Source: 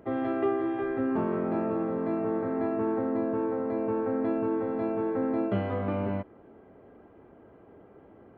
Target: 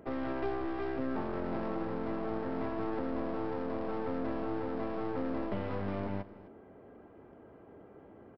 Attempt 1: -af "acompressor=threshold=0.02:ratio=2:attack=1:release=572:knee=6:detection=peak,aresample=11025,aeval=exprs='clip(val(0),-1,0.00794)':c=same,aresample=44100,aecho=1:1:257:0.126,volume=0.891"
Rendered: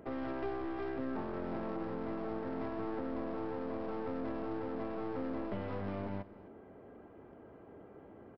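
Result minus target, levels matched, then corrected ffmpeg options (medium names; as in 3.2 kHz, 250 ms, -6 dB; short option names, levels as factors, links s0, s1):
compression: peak gain reduction +4 dB
-af "acompressor=threshold=0.0501:ratio=2:attack=1:release=572:knee=6:detection=peak,aresample=11025,aeval=exprs='clip(val(0),-1,0.00794)':c=same,aresample=44100,aecho=1:1:257:0.126,volume=0.891"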